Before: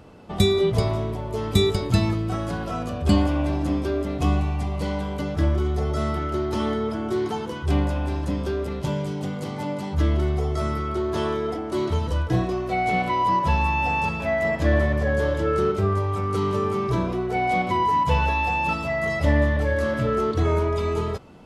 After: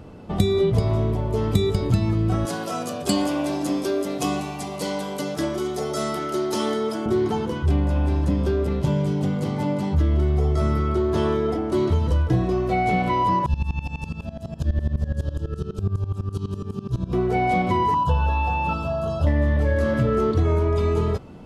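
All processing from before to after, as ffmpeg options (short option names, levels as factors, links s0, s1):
-filter_complex "[0:a]asettb=1/sr,asplit=3[s0][s1][s2];[s0]atrim=end=2.454[s3];[s1]atrim=start=2.45:end=7.06,asetpts=PTS-STARTPTS,afade=t=in:d=0.004:c=qsin,afade=t=out:st=4.606:d=0.004:c=qsin,highpass=f=120:w=0.5412,highpass=f=120:w=1.3066,bass=f=250:g=-12,treble=f=4000:g=13[s4];[s2]atrim=start=7.056[s5];[s3][s4]acrossfade=d=0.004:c1=hsin:c2=qsin[s6];[s6][s5]acrossfade=d=0.004:c1=qsin:c2=hsin,asettb=1/sr,asplit=3[s7][s8][s9];[s7]atrim=end=13.464[s10];[s8]atrim=start=13.46:end=17.13,asetpts=PTS-STARTPTS,afade=t=in:d=0.004:c=qsin,afade=t=out:st=3.666:d=0.004:c=qsin,acrossover=split=230|3000[s11][s12][s13];[s12]acompressor=threshold=0.00447:ratio=2:attack=3.2:release=140:knee=2.83:detection=peak[s14];[s11][s14][s13]amix=inputs=3:normalize=0,asuperstop=centerf=2100:order=8:qfactor=3.6,aeval=exprs='val(0)*pow(10,-19*if(lt(mod(-12*n/s,1),2*abs(-12)/1000),1-mod(-12*n/s,1)/(2*abs(-12)/1000),(mod(-12*n/s,1)-2*abs(-12)/1000)/(1-2*abs(-12)/1000))/20)':c=same[s15];[s9]atrim=start=17.126[s16];[s10][s15]acrossfade=d=0.004:c1=hsin:c2=qsin[s17];[s17][s16]acrossfade=d=0.004:c1=qsin:c2=hsin,asettb=1/sr,asplit=3[s18][s19][s20];[s18]atrim=end=17.944[s21];[s19]atrim=start=17.94:end=19.27,asetpts=PTS-STARTPTS,afade=t=in:d=0.004:c=qsin,afade=t=out:st=1.326:d=0.004:c=qsin,acrossover=split=3100[s22][s23];[s23]acompressor=threshold=0.00447:ratio=4:attack=1:release=60[s24];[s22][s24]amix=inputs=2:normalize=0,asuperstop=centerf=2100:order=12:qfactor=2.2,equalizer=f=260:w=0.59:g=-6[s25];[s20]atrim=start=19.266[s26];[s21][s25]acrossfade=d=0.004:c1=hsin:c2=qsin[s27];[s27][s26]acrossfade=d=0.004:c1=qsin:c2=hsin,lowshelf=f=470:g=7.5,acompressor=threshold=0.158:ratio=6"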